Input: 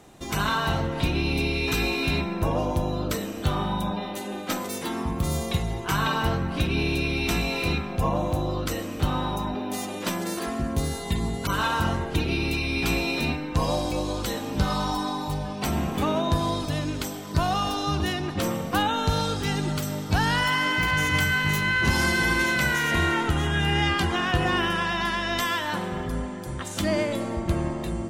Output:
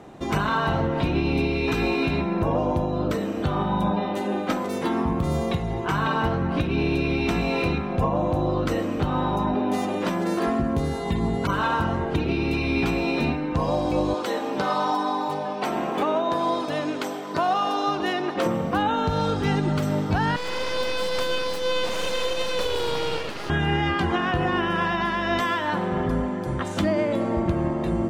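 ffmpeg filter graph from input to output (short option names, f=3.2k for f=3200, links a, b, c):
-filter_complex "[0:a]asettb=1/sr,asplit=3[a][b][c];[a]atrim=end=14.144[d];[b]atrim=start=14.14:end=18.46,asetpts=PTS-STARTPTS,afade=t=in:d=0.004:c=qsin,afade=t=out:st=4.316:d=0.004:c=qsin,highpass=360,aecho=1:1:398:0.0944,atrim=end_sample=190512[e];[c]atrim=start=18.456[f];[d][e]acrossfade=d=0.004:c1=hsin:c2=qsin[g];[g][f]acrossfade=d=0.004:c1=qsin:c2=hsin,asettb=1/sr,asplit=3[h][i][j];[h]atrim=end=20.364[k];[i]atrim=start=20.36:end=23.5,asetpts=PTS-STARTPTS,afade=t=in:d=0.004:c=qsin,afade=t=out:st=3.136:d=0.004:c=qsin,highpass=f=1.1k:w=0.5412,highpass=f=1.1k:w=1.3066,aeval=exprs='abs(val(0))':c=same[l];[j]atrim=start=23.496[m];[k][l]acrossfade=d=0.004:c1=hsin:c2=qsin[n];[n][m]acrossfade=d=0.004:c1=qsin:c2=hsin,lowpass=f=1.2k:p=1,lowshelf=f=87:g=-10.5,alimiter=limit=-22.5dB:level=0:latency=1:release=379,volume=9dB"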